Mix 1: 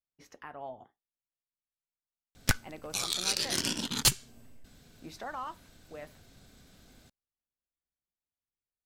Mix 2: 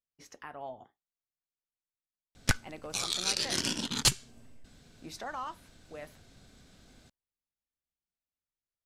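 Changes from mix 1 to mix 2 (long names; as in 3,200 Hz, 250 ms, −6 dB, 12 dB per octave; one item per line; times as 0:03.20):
speech: add high-shelf EQ 5,700 Hz +11.5 dB
master: add low-pass filter 10,000 Hz 12 dB per octave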